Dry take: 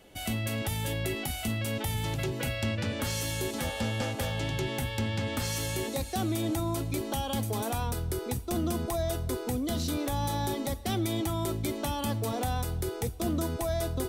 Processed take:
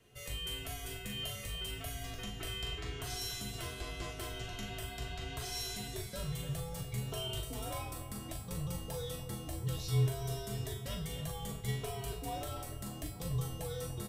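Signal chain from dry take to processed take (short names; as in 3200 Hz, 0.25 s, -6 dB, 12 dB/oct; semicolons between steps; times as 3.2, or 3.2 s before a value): resonator 300 Hz, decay 0.48 s, harmonics all, mix 90%; frequency shift -170 Hz; doubler 40 ms -7.5 dB; analogue delay 0.293 s, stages 4096, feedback 68%, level -11.5 dB; gain +6.5 dB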